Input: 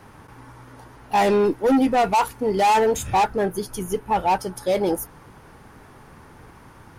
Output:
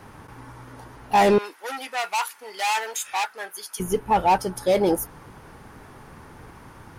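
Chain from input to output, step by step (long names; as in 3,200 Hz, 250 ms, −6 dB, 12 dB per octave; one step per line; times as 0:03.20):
0:01.38–0:03.80: high-pass filter 1,400 Hz 12 dB per octave
level +1.5 dB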